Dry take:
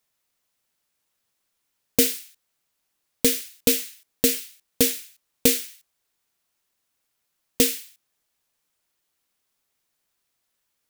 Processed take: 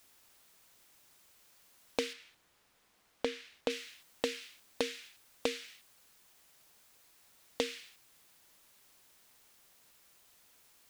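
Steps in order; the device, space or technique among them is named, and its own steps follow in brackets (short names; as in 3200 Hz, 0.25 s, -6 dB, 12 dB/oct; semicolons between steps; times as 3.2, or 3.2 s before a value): baby monitor (BPF 410–3300 Hz; compressor, threshold -34 dBFS, peak gain reduction 14 dB; white noise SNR 20 dB); 2.13–3.7 high shelf 4900 Hz -11.5 dB; gain +3 dB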